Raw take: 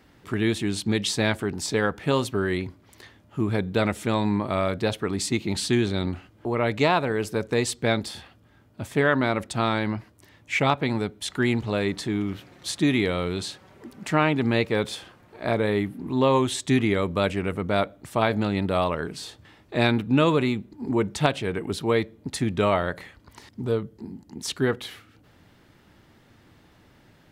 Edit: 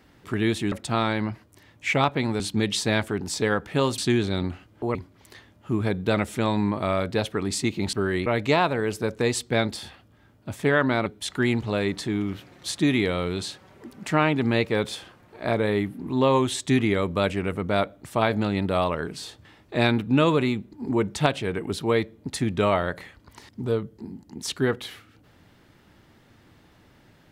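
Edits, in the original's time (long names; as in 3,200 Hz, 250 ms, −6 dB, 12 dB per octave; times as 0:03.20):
0:02.30–0:02.63: swap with 0:05.61–0:06.58
0:09.38–0:11.06: move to 0:00.72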